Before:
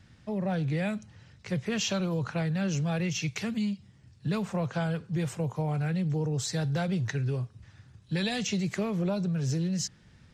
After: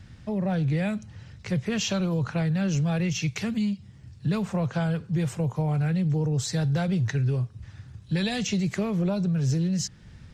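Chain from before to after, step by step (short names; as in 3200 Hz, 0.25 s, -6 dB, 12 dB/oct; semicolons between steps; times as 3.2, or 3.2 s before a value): low shelf 120 Hz +9 dB; in parallel at -2.5 dB: compressor, threshold -39 dBFS, peak gain reduction 15 dB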